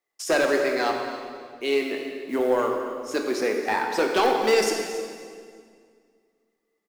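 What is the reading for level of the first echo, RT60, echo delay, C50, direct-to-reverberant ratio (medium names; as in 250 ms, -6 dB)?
-15.5 dB, 2.1 s, 277 ms, 3.5 dB, 1.5 dB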